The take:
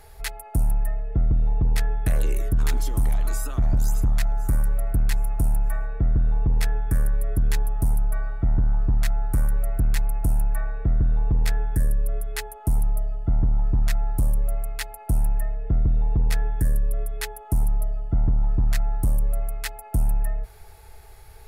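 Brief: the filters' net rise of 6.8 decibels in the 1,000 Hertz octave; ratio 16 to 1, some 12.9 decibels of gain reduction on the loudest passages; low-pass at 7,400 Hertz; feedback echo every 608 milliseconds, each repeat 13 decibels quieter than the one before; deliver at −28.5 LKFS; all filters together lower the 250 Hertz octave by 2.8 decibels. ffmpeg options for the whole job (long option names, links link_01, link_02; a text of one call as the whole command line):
ffmpeg -i in.wav -af "lowpass=7400,equalizer=frequency=250:width_type=o:gain=-5,equalizer=frequency=1000:width_type=o:gain=9,acompressor=threshold=-30dB:ratio=16,aecho=1:1:608|1216|1824:0.224|0.0493|0.0108,volume=8.5dB" out.wav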